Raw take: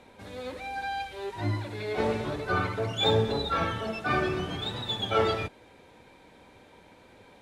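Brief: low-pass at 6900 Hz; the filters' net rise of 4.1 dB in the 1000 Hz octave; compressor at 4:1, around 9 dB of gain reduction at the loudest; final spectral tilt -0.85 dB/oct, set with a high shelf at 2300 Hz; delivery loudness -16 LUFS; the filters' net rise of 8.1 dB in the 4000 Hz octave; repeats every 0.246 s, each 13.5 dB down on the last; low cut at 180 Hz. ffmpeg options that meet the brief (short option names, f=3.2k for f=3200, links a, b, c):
-af "highpass=180,lowpass=6.9k,equalizer=f=1k:t=o:g=4.5,highshelf=f=2.3k:g=3,equalizer=f=4k:t=o:g=7,acompressor=threshold=-26dB:ratio=4,aecho=1:1:246|492:0.211|0.0444,volume=13.5dB"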